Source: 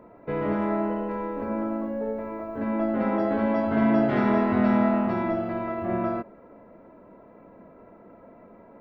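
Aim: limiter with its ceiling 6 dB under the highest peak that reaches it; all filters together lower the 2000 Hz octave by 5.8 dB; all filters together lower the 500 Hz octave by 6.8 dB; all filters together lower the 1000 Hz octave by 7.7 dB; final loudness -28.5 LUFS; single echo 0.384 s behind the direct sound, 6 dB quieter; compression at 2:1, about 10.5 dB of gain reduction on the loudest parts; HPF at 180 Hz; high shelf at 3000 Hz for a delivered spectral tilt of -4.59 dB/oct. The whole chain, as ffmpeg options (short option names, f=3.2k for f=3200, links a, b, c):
-af "highpass=180,equalizer=f=500:t=o:g=-6.5,equalizer=f=1k:t=o:g=-7,equalizer=f=2k:t=o:g=-6,highshelf=f=3k:g=5,acompressor=threshold=-41dB:ratio=2,alimiter=level_in=7.5dB:limit=-24dB:level=0:latency=1,volume=-7.5dB,aecho=1:1:384:0.501,volume=12dB"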